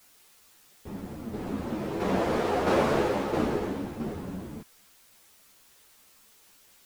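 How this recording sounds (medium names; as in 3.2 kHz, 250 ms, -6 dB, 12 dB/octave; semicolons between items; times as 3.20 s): tremolo saw down 1.5 Hz, depth 50%; a quantiser's noise floor 10-bit, dither triangular; a shimmering, thickened sound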